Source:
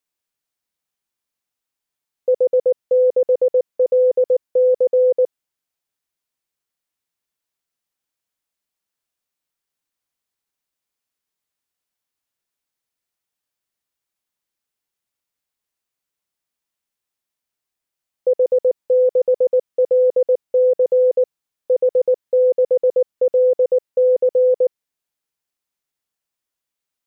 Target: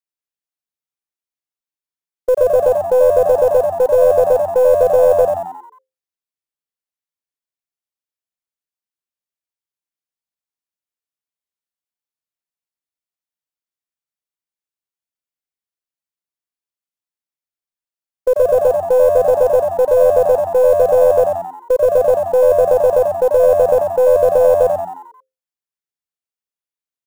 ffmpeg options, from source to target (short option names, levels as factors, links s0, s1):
-filter_complex "[0:a]agate=range=0.158:threshold=0.0891:ratio=16:detection=peak,acontrast=41,aeval=exprs='0.501*(cos(1*acos(clip(val(0)/0.501,-1,1)))-cos(1*PI/2))+0.0316*(cos(2*acos(clip(val(0)/0.501,-1,1)))-cos(2*PI/2))':c=same,acrusher=bits=7:mode=log:mix=0:aa=0.000001,asplit=2[s0][s1];[s1]asplit=6[s2][s3][s4][s5][s6][s7];[s2]adelay=89,afreqshift=87,volume=0.562[s8];[s3]adelay=178,afreqshift=174,volume=0.282[s9];[s4]adelay=267,afreqshift=261,volume=0.141[s10];[s5]adelay=356,afreqshift=348,volume=0.07[s11];[s6]adelay=445,afreqshift=435,volume=0.0351[s12];[s7]adelay=534,afreqshift=522,volume=0.0176[s13];[s8][s9][s10][s11][s12][s13]amix=inputs=6:normalize=0[s14];[s0][s14]amix=inputs=2:normalize=0,volume=0.794"